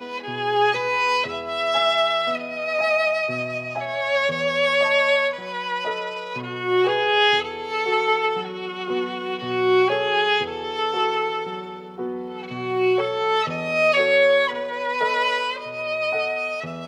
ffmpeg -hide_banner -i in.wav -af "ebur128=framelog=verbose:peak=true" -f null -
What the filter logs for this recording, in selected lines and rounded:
Integrated loudness:
  I:         -21.6 LUFS
  Threshold: -31.7 LUFS
Loudness range:
  LRA:         2.4 LU
  Threshold: -41.7 LUFS
  LRA low:   -22.9 LUFS
  LRA high:  -20.5 LUFS
True peak:
  Peak:       -7.3 dBFS